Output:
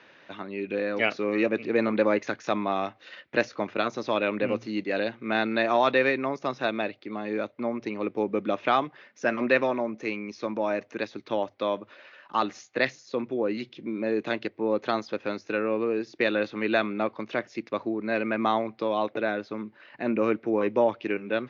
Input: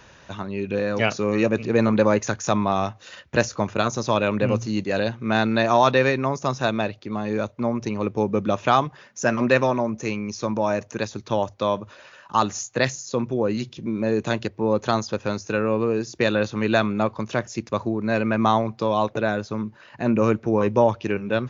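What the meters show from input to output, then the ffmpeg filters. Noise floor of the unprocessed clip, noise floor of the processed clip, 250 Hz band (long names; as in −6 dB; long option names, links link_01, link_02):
−50 dBFS, −58 dBFS, −5.5 dB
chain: -af "highpass=260,equalizer=frequency=300:width_type=q:width=4:gain=5,equalizer=frequency=970:width_type=q:width=4:gain=-4,equalizer=frequency=2100:width_type=q:width=4:gain=6,lowpass=frequency=4300:width=0.5412,lowpass=frequency=4300:width=1.3066,volume=-4dB"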